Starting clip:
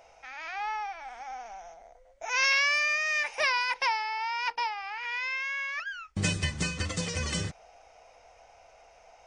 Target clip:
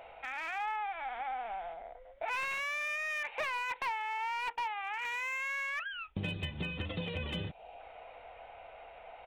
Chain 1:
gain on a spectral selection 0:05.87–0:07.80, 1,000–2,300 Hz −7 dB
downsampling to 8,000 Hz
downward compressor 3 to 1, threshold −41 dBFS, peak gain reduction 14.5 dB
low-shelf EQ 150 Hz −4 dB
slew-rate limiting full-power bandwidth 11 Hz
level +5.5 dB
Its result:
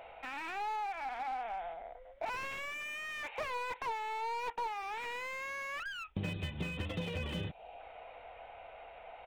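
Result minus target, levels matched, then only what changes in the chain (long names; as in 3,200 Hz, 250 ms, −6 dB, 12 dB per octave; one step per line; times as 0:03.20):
slew-rate limiting: distortion +10 dB
change: slew-rate limiting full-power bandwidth 27 Hz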